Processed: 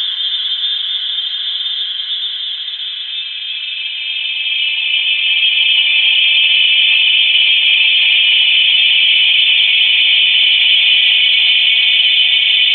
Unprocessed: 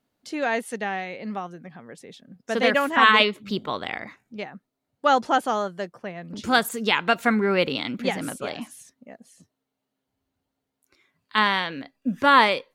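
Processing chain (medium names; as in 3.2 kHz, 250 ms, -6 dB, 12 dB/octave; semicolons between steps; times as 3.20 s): tilt shelf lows +7 dB, about 880 Hz; frequency inversion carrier 3.8 kHz; LFO band-pass saw down 0.23 Hz 810–2800 Hz; Paulstretch 12×, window 1.00 s, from 4.40 s; loudness maximiser +20.5 dB; trim -1 dB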